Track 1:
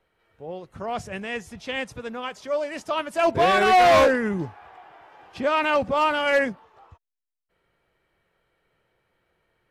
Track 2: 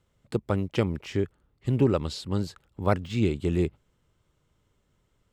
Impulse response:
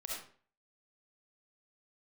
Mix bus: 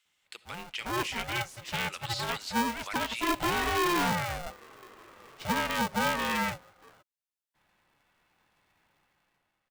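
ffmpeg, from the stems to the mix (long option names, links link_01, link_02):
-filter_complex "[0:a]highpass=350,dynaudnorm=framelen=170:gausssize=9:maxgain=13dB,aeval=exprs='val(0)*sgn(sin(2*PI*350*n/s))':channel_layout=same,adelay=50,volume=-11.5dB[link_01];[1:a]highpass=frequency=2400:width_type=q:width=1.5,asoftclip=type=hard:threshold=-23.5dB,alimiter=level_in=5.5dB:limit=-24dB:level=0:latency=1:release=90,volume=-5.5dB,volume=3dB,asplit=2[link_02][link_03];[link_03]volume=-14.5dB[link_04];[2:a]atrim=start_sample=2205[link_05];[link_04][link_05]afir=irnorm=-1:irlink=0[link_06];[link_01][link_02][link_06]amix=inputs=3:normalize=0,alimiter=limit=-19.5dB:level=0:latency=1:release=138"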